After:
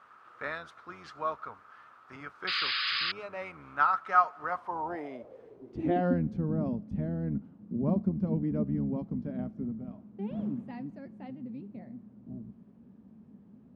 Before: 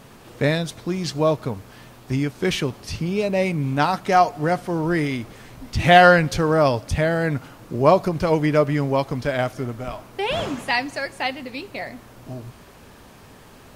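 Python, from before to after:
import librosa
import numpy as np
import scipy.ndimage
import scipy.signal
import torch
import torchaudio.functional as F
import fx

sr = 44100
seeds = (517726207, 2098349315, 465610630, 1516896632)

y = fx.octave_divider(x, sr, octaves=1, level_db=-3.0)
y = fx.filter_sweep_bandpass(y, sr, from_hz=1300.0, to_hz=210.0, start_s=4.39, end_s=6.27, q=7.3)
y = fx.spec_paint(y, sr, seeds[0], shape='noise', start_s=2.47, length_s=0.65, low_hz=1100.0, high_hz=5100.0, level_db=-35.0)
y = F.gain(torch.from_numpy(y), 4.0).numpy()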